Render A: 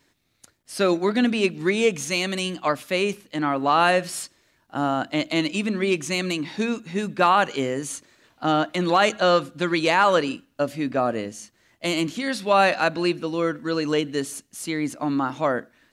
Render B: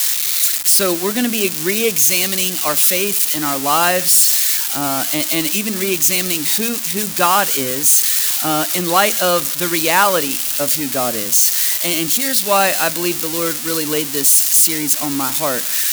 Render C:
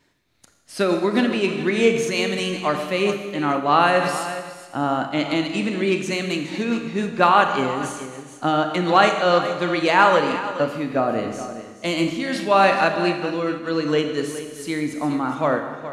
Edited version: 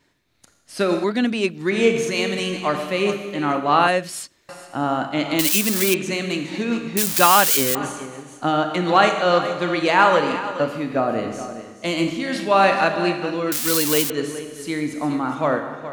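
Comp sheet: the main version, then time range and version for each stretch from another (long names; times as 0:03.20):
C
0:01.04–0:01.71: punch in from A
0:03.88–0:04.49: punch in from A
0:05.39–0:05.94: punch in from B
0:06.97–0:07.75: punch in from B
0:13.52–0:14.10: punch in from B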